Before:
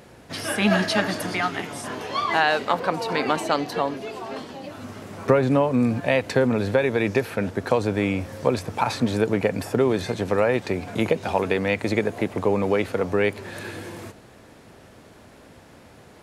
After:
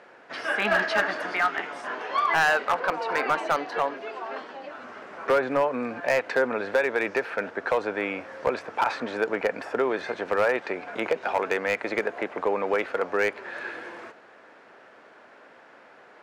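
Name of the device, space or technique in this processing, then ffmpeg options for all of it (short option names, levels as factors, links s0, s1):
megaphone: -af "highpass=480,lowpass=3300,equalizer=f=1500:t=o:w=0.59:g=5.5,asoftclip=type=hard:threshold=0.168,equalizer=f=3700:t=o:w=0.72:g=-4"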